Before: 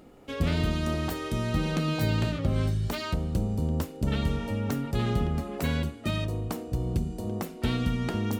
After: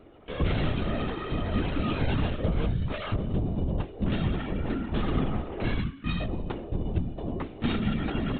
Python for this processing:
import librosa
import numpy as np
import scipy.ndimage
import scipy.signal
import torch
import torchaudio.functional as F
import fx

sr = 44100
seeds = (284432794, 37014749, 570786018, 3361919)

y = fx.spec_erase(x, sr, start_s=5.79, length_s=0.41, low_hz=360.0, high_hz=890.0)
y = fx.lpc_vocoder(y, sr, seeds[0], excitation='whisper', order=16)